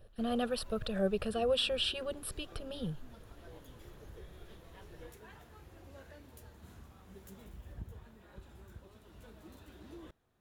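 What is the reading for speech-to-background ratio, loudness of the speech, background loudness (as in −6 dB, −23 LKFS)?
19.5 dB, −34.5 LKFS, −54.0 LKFS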